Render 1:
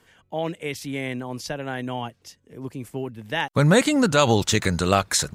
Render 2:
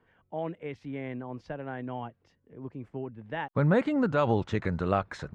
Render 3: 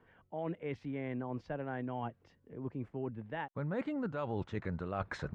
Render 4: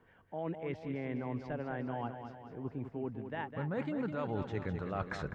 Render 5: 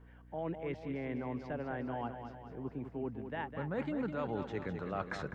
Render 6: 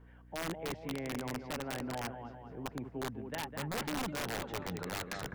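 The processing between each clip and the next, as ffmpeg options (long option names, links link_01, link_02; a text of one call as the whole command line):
ffmpeg -i in.wav -af "lowpass=1600,volume=-6.5dB" out.wav
ffmpeg -i in.wav -af "highshelf=frequency=5100:gain=-9,areverse,acompressor=threshold=-36dB:ratio=8,areverse,volume=2dB" out.wav
ffmpeg -i in.wav -af "aecho=1:1:205|410|615|820|1025|1230:0.398|0.215|0.116|0.0627|0.0339|0.0183" out.wav
ffmpeg -i in.wav -filter_complex "[0:a]acrossover=split=150|740|1800[link_01][link_02][link_03][link_04];[link_01]acompressor=threshold=-51dB:ratio=6[link_05];[link_05][link_02][link_03][link_04]amix=inputs=4:normalize=0,aeval=exprs='val(0)+0.00158*(sin(2*PI*60*n/s)+sin(2*PI*2*60*n/s)/2+sin(2*PI*3*60*n/s)/3+sin(2*PI*4*60*n/s)/4+sin(2*PI*5*60*n/s)/5)':channel_layout=same" out.wav
ffmpeg -i in.wav -af "aeval=exprs='(mod(33.5*val(0)+1,2)-1)/33.5':channel_layout=same" out.wav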